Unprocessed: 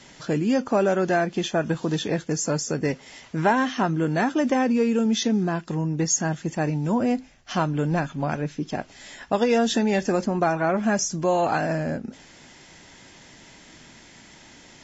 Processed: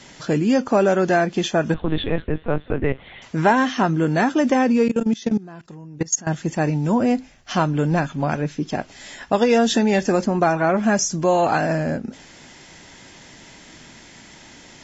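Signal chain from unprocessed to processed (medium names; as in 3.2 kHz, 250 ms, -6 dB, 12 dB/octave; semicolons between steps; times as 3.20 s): 1.74–3.22 s: LPC vocoder at 8 kHz pitch kept; 4.88–6.27 s: level held to a coarse grid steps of 21 dB; trim +4 dB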